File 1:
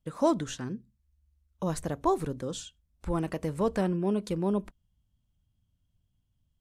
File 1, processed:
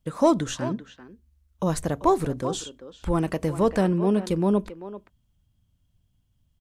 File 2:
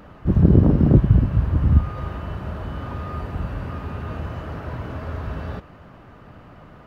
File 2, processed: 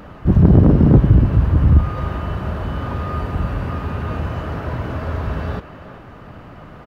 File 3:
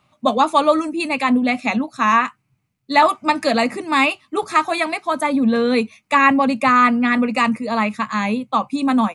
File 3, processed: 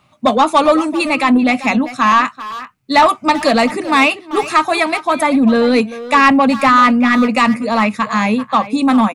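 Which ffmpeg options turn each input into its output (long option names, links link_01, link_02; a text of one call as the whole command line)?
ffmpeg -i in.wav -filter_complex "[0:a]acontrast=84,asplit=2[link_01][link_02];[link_02]adelay=390,highpass=300,lowpass=3400,asoftclip=type=hard:threshold=-10dB,volume=-12dB[link_03];[link_01][link_03]amix=inputs=2:normalize=0,volume=-1dB" out.wav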